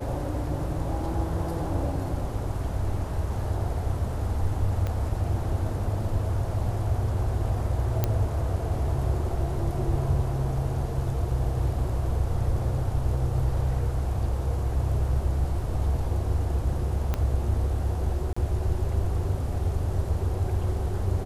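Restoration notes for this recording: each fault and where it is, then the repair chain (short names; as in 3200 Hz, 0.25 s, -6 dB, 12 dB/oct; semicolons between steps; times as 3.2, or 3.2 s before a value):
4.87 pop -18 dBFS
8.04 pop -10 dBFS
17.14 pop -14 dBFS
18.33–18.36 gap 35 ms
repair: de-click; interpolate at 18.33, 35 ms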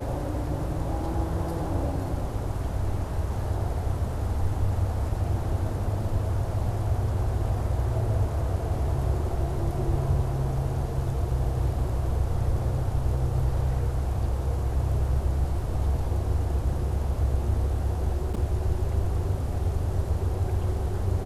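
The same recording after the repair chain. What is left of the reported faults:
4.87 pop
17.14 pop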